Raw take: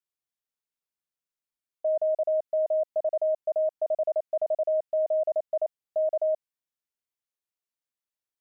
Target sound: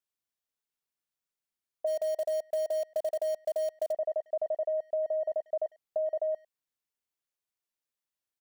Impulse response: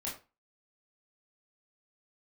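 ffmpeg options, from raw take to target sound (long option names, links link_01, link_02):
-filter_complex "[0:a]acompressor=threshold=-28dB:ratio=6,asplit=3[link_01][link_02][link_03];[link_01]afade=type=out:start_time=1.86:duration=0.02[link_04];[link_02]acrusher=bits=5:mode=log:mix=0:aa=0.000001,afade=type=in:start_time=1.86:duration=0.02,afade=type=out:start_time=3.91:duration=0.02[link_05];[link_03]afade=type=in:start_time=3.91:duration=0.02[link_06];[link_04][link_05][link_06]amix=inputs=3:normalize=0,asplit=2[link_07][link_08];[link_08]adelay=100,highpass=300,lowpass=3400,asoftclip=type=hard:threshold=-32dB,volume=-25dB[link_09];[link_07][link_09]amix=inputs=2:normalize=0"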